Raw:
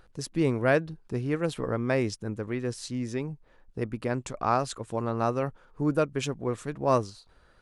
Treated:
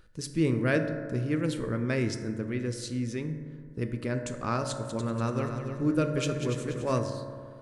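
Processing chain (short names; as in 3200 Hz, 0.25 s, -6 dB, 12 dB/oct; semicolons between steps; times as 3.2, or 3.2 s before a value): bell 790 Hz -12.5 dB 1 oct; 4.7–6.99 multi-head echo 96 ms, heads second and third, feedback 45%, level -9 dB; reverb RT60 2.1 s, pre-delay 3 ms, DRR 5 dB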